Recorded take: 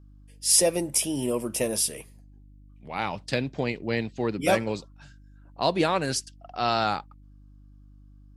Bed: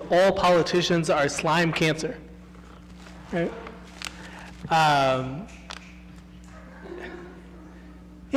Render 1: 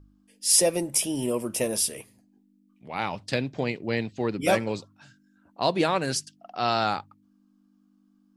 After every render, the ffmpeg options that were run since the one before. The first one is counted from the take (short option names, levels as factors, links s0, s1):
-af "bandreject=f=50:t=h:w=4,bandreject=f=100:t=h:w=4,bandreject=f=150:t=h:w=4"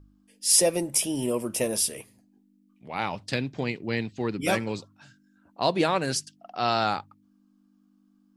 -filter_complex "[0:a]asettb=1/sr,asplit=3[s0][s1][s2];[s0]atrim=end=3.334[s3];[s1]atrim=start=3.33:end=4.78,asetpts=PTS-STARTPTS,afade=t=in:d=0.004:c=qsin,afade=t=out:st=1.446:d=0.004:c=qsin,equalizer=f=600:t=o:w=0.77:g=-5.5[s4];[s2]atrim=start=4.776[s5];[s3][s4]acrossfade=d=0.004:c1=hsin:c2=qsin[s6];[s6][s5]acrossfade=d=0.004:c1=qsin:c2=hsin"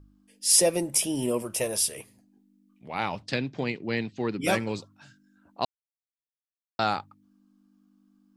-filter_complex "[0:a]asettb=1/sr,asplit=3[s0][s1][s2];[s0]atrim=end=1.424[s3];[s1]atrim=start=1.42:end=1.97,asetpts=PTS-STARTPTS,afade=t=in:d=0.004:c=qsin,afade=t=out:st=0.546:d=0.004:c=qsin,equalizer=f=250:w=1.5:g=-9[s4];[s2]atrim=start=1.966[s5];[s3][s4]acrossfade=d=0.004:c1=hsin:c2=qsin[s6];[s6][s5]acrossfade=d=0.004:c1=qsin:c2=hsin,asettb=1/sr,asplit=3[s7][s8][s9];[s7]atrim=end=3.224[s10];[s8]atrim=start=3.22:end=4.44,asetpts=PTS-STARTPTS,afade=t=in:d=0.004:c=qsin,afade=t=out:st=1.216:d=0.004:c=qsin,highpass=110,lowpass=6500[s11];[s9]atrim=start=4.436[s12];[s10][s11]acrossfade=d=0.004:c1=hsin:c2=qsin[s13];[s13][s12]acrossfade=d=0.004:c1=qsin:c2=hsin,asplit=3[s14][s15][s16];[s14]atrim=end=5.65,asetpts=PTS-STARTPTS,afade=t=out:st=5.646:d=0.004:c=hsin[s17];[s15]atrim=start=5.65:end=6.79,asetpts=PTS-STARTPTS,volume=0[s18];[s16]atrim=start=6.79,asetpts=PTS-STARTPTS,afade=t=in:d=0.004:c=hsin[s19];[s17][s18][s19]concat=n=3:v=0:a=1"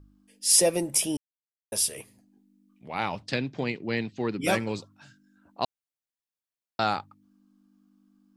-filter_complex "[0:a]asplit=3[s0][s1][s2];[s0]atrim=end=1.17,asetpts=PTS-STARTPTS,afade=t=out:st=1.166:d=0.004:c=hsin[s3];[s1]atrim=start=1.17:end=1.72,asetpts=PTS-STARTPTS,volume=0[s4];[s2]atrim=start=1.72,asetpts=PTS-STARTPTS,afade=t=in:d=0.004:c=hsin[s5];[s3][s4][s5]concat=n=3:v=0:a=1"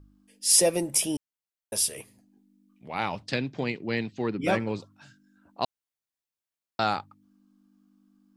-filter_complex "[0:a]asplit=3[s0][s1][s2];[s0]afade=t=out:st=4.28:d=0.02[s3];[s1]aemphasis=mode=reproduction:type=75fm,afade=t=in:st=4.28:d=0.02,afade=t=out:st=4.79:d=0.02[s4];[s2]afade=t=in:st=4.79:d=0.02[s5];[s3][s4][s5]amix=inputs=3:normalize=0"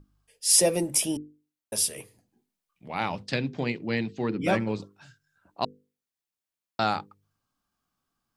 -af "equalizer=f=170:w=0.75:g=3,bandreject=f=50:t=h:w=6,bandreject=f=100:t=h:w=6,bandreject=f=150:t=h:w=6,bandreject=f=200:t=h:w=6,bandreject=f=250:t=h:w=6,bandreject=f=300:t=h:w=6,bandreject=f=350:t=h:w=6,bandreject=f=400:t=h:w=6,bandreject=f=450:t=h:w=6,bandreject=f=500:t=h:w=6"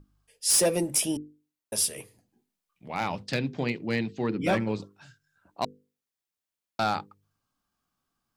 -af "asoftclip=type=hard:threshold=0.133"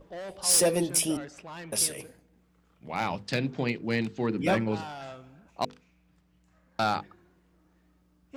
-filter_complex "[1:a]volume=0.0944[s0];[0:a][s0]amix=inputs=2:normalize=0"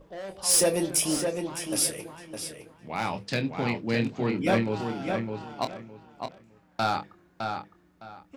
-filter_complex "[0:a]asplit=2[s0][s1];[s1]adelay=26,volume=0.355[s2];[s0][s2]amix=inputs=2:normalize=0,asplit=2[s3][s4];[s4]adelay=610,lowpass=f=4000:p=1,volume=0.562,asplit=2[s5][s6];[s6]adelay=610,lowpass=f=4000:p=1,volume=0.23,asplit=2[s7][s8];[s8]adelay=610,lowpass=f=4000:p=1,volume=0.23[s9];[s5][s7][s9]amix=inputs=3:normalize=0[s10];[s3][s10]amix=inputs=2:normalize=0"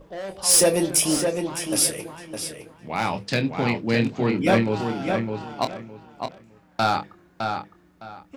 -af "volume=1.78"